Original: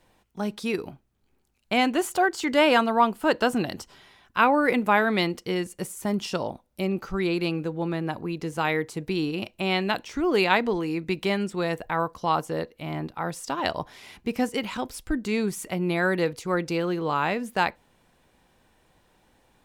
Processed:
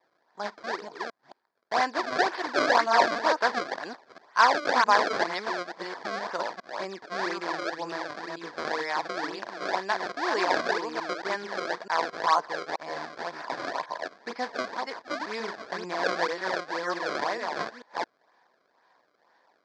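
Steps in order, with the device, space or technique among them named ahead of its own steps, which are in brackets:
delay that plays each chunk backwards 220 ms, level −3 dB
circuit-bent sampling toy (sample-and-hold swept by an LFO 28×, swing 160% 2 Hz; loudspeaker in its box 480–5,500 Hz, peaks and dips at 680 Hz +4 dB, 1,000 Hz +9 dB, 1,700 Hz +9 dB, 2,800 Hz −9 dB, 4,700 Hz +6 dB)
level −4.5 dB

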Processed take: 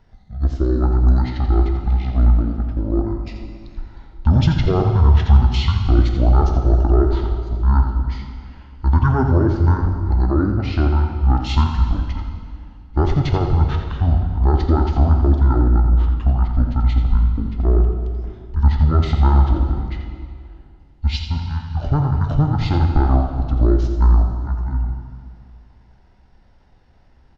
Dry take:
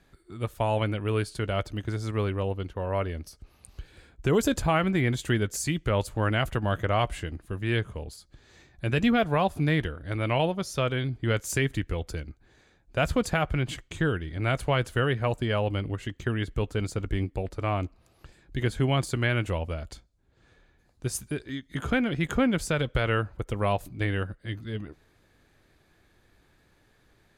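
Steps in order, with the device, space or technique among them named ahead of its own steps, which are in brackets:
monster voice (pitch shifter −9.5 semitones; formants moved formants −4.5 semitones; low-shelf EQ 110 Hz +8 dB; single-tap delay 85 ms −9 dB; convolution reverb RT60 2.1 s, pre-delay 3 ms, DRR 4.5 dB)
level +4.5 dB

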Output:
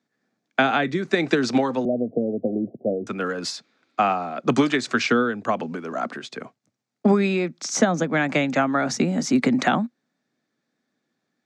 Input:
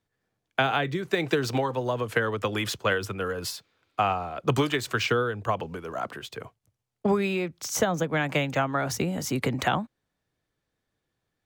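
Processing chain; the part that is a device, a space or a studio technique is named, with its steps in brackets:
television speaker (loudspeaker in its box 170–7,200 Hz, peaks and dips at 240 Hz +9 dB, 460 Hz −4 dB, 980 Hz −5 dB, 3,000 Hz −7 dB)
0:01.85–0:03.07: Butterworth low-pass 720 Hz 96 dB per octave
level +5.5 dB

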